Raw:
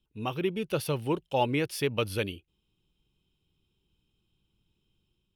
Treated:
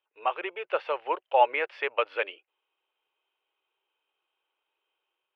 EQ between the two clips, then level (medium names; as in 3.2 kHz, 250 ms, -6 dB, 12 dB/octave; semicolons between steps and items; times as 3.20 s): inverse Chebyshev high-pass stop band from 220 Hz, stop band 50 dB; low-pass 2.3 kHz 24 dB/octave; +8.0 dB